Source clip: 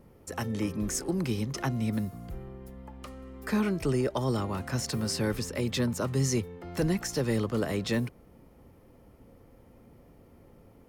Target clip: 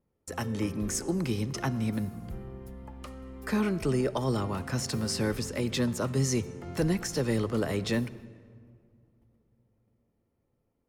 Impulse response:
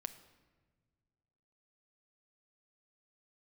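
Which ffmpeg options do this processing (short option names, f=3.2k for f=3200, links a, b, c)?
-filter_complex "[0:a]agate=range=-22dB:threshold=-50dB:ratio=16:detection=peak,asplit=2[a][b];[1:a]atrim=start_sample=2205,asetrate=23814,aresample=44100[c];[b][c]afir=irnorm=-1:irlink=0,volume=-2dB[d];[a][d]amix=inputs=2:normalize=0,volume=-5dB"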